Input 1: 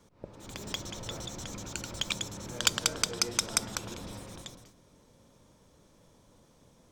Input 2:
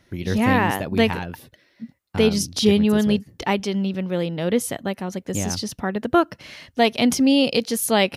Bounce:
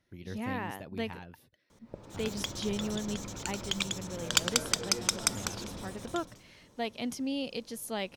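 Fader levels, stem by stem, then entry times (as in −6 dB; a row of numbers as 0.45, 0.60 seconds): 0.0, −17.0 decibels; 1.70, 0.00 seconds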